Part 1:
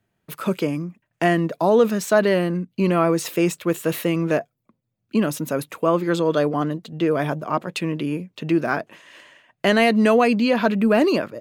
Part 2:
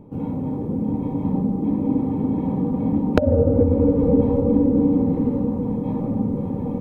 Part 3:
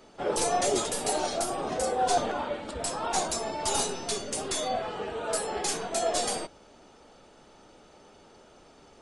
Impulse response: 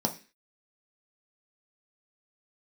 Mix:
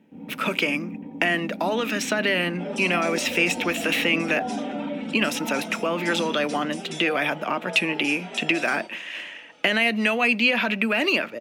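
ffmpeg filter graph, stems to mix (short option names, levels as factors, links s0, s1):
-filter_complex "[0:a]dynaudnorm=f=180:g=5:m=1.78,alimiter=limit=0.376:level=0:latency=1:release=36,acrossover=split=440|960|7500[s0][s1][s2][s3];[s0]acompressor=threshold=0.0224:ratio=4[s4];[s1]acompressor=threshold=0.0251:ratio=4[s5];[s2]acompressor=threshold=0.0398:ratio=4[s6];[s3]acompressor=threshold=0.00891:ratio=4[s7];[s4][s5][s6][s7]amix=inputs=4:normalize=0,volume=0.794,asplit=3[s8][s9][s10];[s9]volume=0.126[s11];[1:a]volume=0.112,asplit=2[s12][s13];[s13]volume=0.224[s14];[2:a]asplit=2[s15][s16];[s16]adelay=4.4,afreqshift=-0.54[s17];[s15][s17]amix=inputs=2:normalize=1,adelay=2400,volume=0.841,asplit=2[s18][s19];[s19]volume=0.15[s20];[s10]apad=whole_len=503691[s21];[s18][s21]sidechaincompress=threshold=0.00794:ratio=8:attack=16:release=158[s22];[s12][s22]amix=inputs=2:normalize=0,alimiter=level_in=2.37:limit=0.0631:level=0:latency=1:release=79,volume=0.422,volume=1[s23];[3:a]atrim=start_sample=2205[s24];[s11][s14][s20]amix=inputs=3:normalize=0[s25];[s25][s24]afir=irnorm=-1:irlink=0[s26];[s8][s23][s26]amix=inputs=3:normalize=0,highpass=96,equalizer=f=2500:w=1.3:g=14.5"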